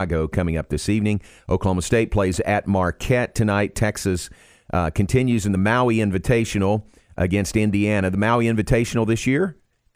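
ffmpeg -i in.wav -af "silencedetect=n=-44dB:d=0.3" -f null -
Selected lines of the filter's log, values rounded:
silence_start: 9.53
silence_end: 9.95 | silence_duration: 0.42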